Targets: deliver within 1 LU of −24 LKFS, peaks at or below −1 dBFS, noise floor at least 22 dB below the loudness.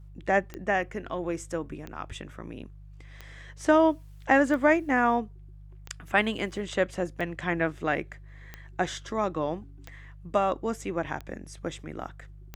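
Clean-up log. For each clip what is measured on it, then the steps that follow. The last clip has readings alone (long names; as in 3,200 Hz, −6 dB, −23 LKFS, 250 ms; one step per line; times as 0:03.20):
number of clicks 10; mains hum 50 Hz; hum harmonics up to 150 Hz; level of the hum −44 dBFS; integrated loudness −28.0 LKFS; sample peak −8.5 dBFS; target loudness −24.0 LKFS
→ click removal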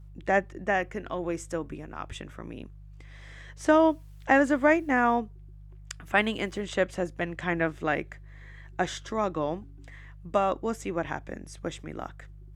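number of clicks 0; mains hum 50 Hz; hum harmonics up to 150 Hz; level of the hum −44 dBFS
→ hum removal 50 Hz, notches 3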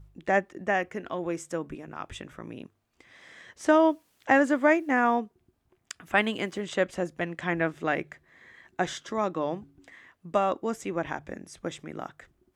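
mains hum none found; integrated loudness −27.5 LKFS; sample peak −8.5 dBFS; target loudness −24.0 LKFS
→ level +3.5 dB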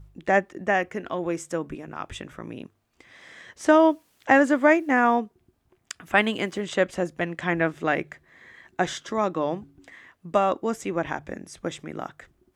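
integrated loudness −24.0 LKFS; sample peak −5.0 dBFS; background noise floor −69 dBFS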